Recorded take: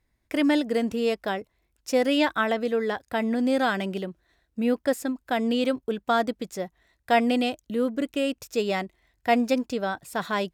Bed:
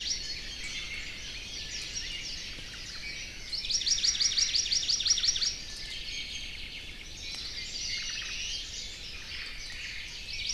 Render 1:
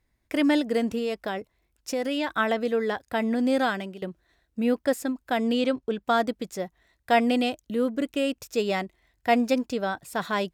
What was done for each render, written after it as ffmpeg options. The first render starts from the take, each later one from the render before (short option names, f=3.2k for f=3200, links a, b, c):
-filter_complex "[0:a]asettb=1/sr,asplit=3[a][b][c];[a]atrim=end=0.984[d];[b]atrim=start=0.98:end=2.36,asetpts=PTS-STARTPTS,afade=t=in:d=0.004:c=qsin,afade=t=out:st=1.376:d=0.004:c=qsin,acompressor=threshold=-25dB:ratio=3:attack=3.2:release=140:knee=1:detection=peak[e];[c]atrim=start=2.356[f];[d][e]acrossfade=d=0.004:c1=hsin:c2=qsin[g];[g][f]acrossfade=d=0.004:c1=qsin:c2=hsin,asettb=1/sr,asplit=3[h][i][j];[h]atrim=end=5.614[k];[i]atrim=start=5.61:end=6.02,asetpts=PTS-STARTPTS,afade=t=in:d=0.004:c=qsin,afade=t=out:st=0.406:d=0.004:c=qsin,lowpass=7.3k[l];[j]atrim=start=6.016[m];[k][l]acrossfade=d=0.004:c1=hsin:c2=qsin[n];[n][m]acrossfade=d=0.004:c1=qsin:c2=hsin,asplit=2[o][p];[o]atrim=end=4.02,asetpts=PTS-STARTPTS,afade=t=out:st=3.61:d=0.41:silence=0.177828[q];[p]atrim=start=4.02,asetpts=PTS-STARTPTS,afade=t=in:d=0.004:c=hsin:silence=0.177828[r];[q][r]concat=n=2:v=0:a=1"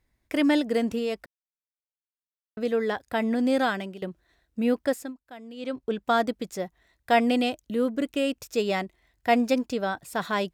-filter_complex "[0:a]asplit=5[a][b][c][d][e];[a]atrim=end=1.26,asetpts=PTS-STARTPTS,afade=t=out:st=1.256:d=0.004:c=hsin[f];[b]atrim=start=1.26:end=2.57,asetpts=PTS-STARTPTS,volume=0[g];[c]atrim=start=2.57:end=5.19,asetpts=PTS-STARTPTS,afade=t=in:d=0.004:c=hsin,afade=t=out:st=2.27:d=0.35:silence=0.125893[h];[d]atrim=start=5.19:end=5.56,asetpts=PTS-STARTPTS,volume=-18dB[i];[e]atrim=start=5.56,asetpts=PTS-STARTPTS,afade=t=in:d=0.35:silence=0.125893[j];[f][g][h][i][j]concat=n=5:v=0:a=1"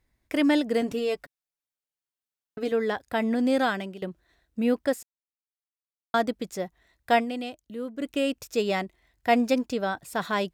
-filter_complex "[0:a]asettb=1/sr,asplit=3[a][b][c];[a]atrim=end=0.814[d];[b]atrim=start=0.81:end=2.72,asetpts=PTS-STARTPTS,afade=t=in:d=0.004:c=qsin,afade=t=out:st=1.906:d=0.004:c=qsin,aecho=1:1:7:0.63,atrim=end_sample=84231[e];[c]atrim=start=2.716[f];[d][e]acrossfade=d=0.004:c1=hsin:c2=qsin[g];[g][f]acrossfade=d=0.004:c1=qsin:c2=hsin,asplit=5[h][i][j][k][l];[h]atrim=end=5.03,asetpts=PTS-STARTPTS,afade=t=out:st=5.026:d=0.004:c=hsin[m];[i]atrim=start=5.03:end=6.14,asetpts=PTS-STARTPTS,volume=0[n];[j]atrim=start=6.14:end=7.26,asetpts=PTS-STARTPTS,afade=t=in:d=0.004:c=hsin,afade=t=out:st=1:d=0.12:silence=0.354813[o];[k]atrim=start=7.26:end=7.97,asetpts=PTS-STARTPTS,volume=-9dB[p];[l]atrim=start=7.97,asetpts=PTS-STARTPTS,afade=t=in:d=0.12:silence=0.354813[q];[m][n][o][p][q]concat=n=5:v=0:a=1"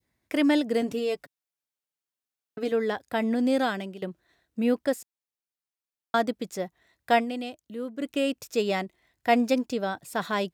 -af "highpass=100,adynamicequalizer=threshold=0.01:dfrequency=1400:dqfactor=0.74:tfrequency=1400:tqfactor=0.74:attack=5:release=100:ratio=0.375:range=2:mode=cutabove:tftype=bell"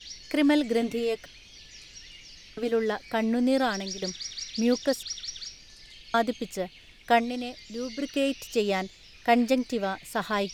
-filter_complex "[1:a]volume=-10dB[a];[0:a][a]amix=inputs=2:normalize=0"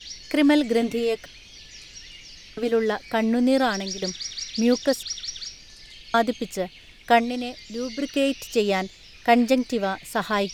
-af "volume=4dB"